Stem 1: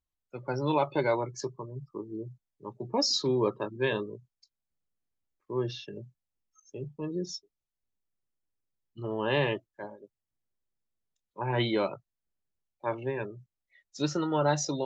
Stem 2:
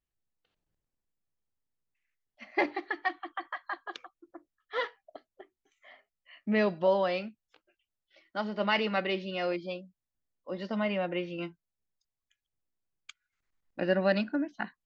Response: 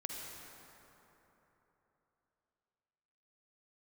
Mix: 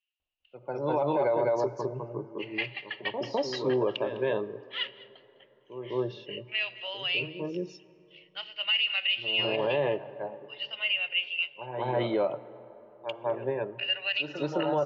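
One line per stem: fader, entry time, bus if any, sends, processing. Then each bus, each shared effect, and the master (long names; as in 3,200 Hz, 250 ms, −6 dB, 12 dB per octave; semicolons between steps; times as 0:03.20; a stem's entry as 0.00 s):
−1.0 dB, 0.20 s, send −16 dB, echo send −3.5 dB, automatic ducking −20 dB, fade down 0.25 s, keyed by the second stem
−2.0 dB, 0.00 s, send −18.5 dB, echo send −20 dB, high-pass with resonance 2,800 Hz, resonance Q 11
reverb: on, RT60 3.6 s, pre-delay 42 ms
echo: single-tap delay 205 ms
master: low-pass filter 3,500 Hz 12 dB per octave; parametric band 620 Hz +12 dB 1.2 octaves; brickwall limiter −18.5 dBFS, peak gain reduction 14.5 dB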